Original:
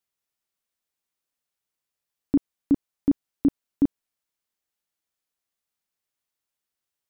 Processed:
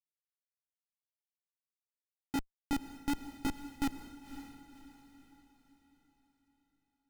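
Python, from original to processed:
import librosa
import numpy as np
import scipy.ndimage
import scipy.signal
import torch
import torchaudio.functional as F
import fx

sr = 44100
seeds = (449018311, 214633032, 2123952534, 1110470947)

y = fx.chorus_voices(x, sr, voices=2, hz=0.85, base_ms=19, depth_ms=3.6, mix_pct=55)
y = fx.chopper(y, sr, hz=0.65, depth_pct=65, duty_pct=50)
y = fx.schmitt(y, sr, flips_db=-32.0)
y = fx.echo_diffused(y, sr, ms=539, feedback_pct=43, wet_db=-7.5)
y = fx.upward_expand(y, sr, threshold_db=-44.0, expansion=1.5)
y = y * librosa.db_to_amplitude(6.0)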